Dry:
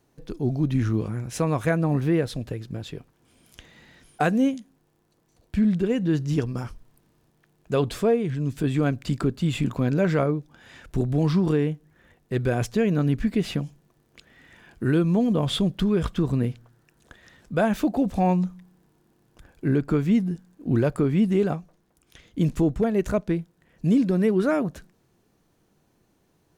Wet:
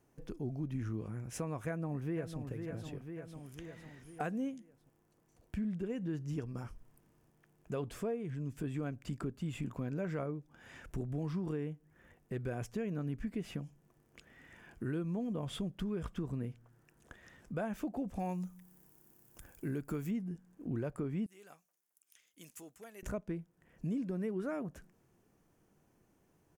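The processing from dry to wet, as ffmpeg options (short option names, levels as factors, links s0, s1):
-filter_complex "[0:a]asplit=2[s0][s1];[s1]afade=t=in:st=1.66:d=0.01,afade=t=out:st=2.39:d=0.01,aecho=0:1:500|1000|1500|2000|2500:0.316228|0.158114|0.0790569|0.0395285|0.0197642[s2];[s0][s2]amix=inputs=2:normalize=0,asettb=1/sr,asplit=3[s3][s4][s5];[s3]atrim=end=18.194[s6];[s4]atrim=start=18.19:end=20.11,asetpts=PTS-STARTPTS,afade=t=in:d=0.004:c=qsin,afade=t=out:st=1.916:d=0.004:c=qsin,aemphasis=mode=production:type=75fm[s7];[s5]atrim=start=20.106[s8];[s6][s7]acrossfade=d=0.004:c1=hsin:c2=qsin[s9];[s9][s8]acrossfade=d=0.004:c1=qsin:c2=hsin,asettb=1/sr,asplit=3[s10][s11][s12];[s10]atrim=end=21.264[s13];[s11]atrim=start=21.26:end=23.03,asetpts=PTS-STARTPTS,afade=t=in:d=0.004:c=qsin,afade=t=out:st=1.766:d=0.004:c=qsin,aderivative[s14];[s12]atrim=start=23.026[s15];[s13][s14]acrossfade=d=0.004:c1=hsin:c2=qsin[s16];[s16][s15]acrossfade=d=0.004:c1=qsin:c2=hsin,equalizer=f=4000:t=o:w=0.55:g=-9.5,acompressor=threshold=0.0126:ratio=2,volume=0.562"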